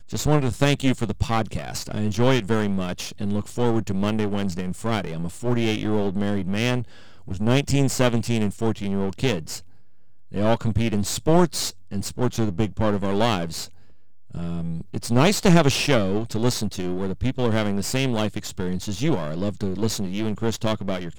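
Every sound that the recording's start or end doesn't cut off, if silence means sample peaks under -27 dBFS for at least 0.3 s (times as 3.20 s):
7.28–9.58 s
10.34–13.65 s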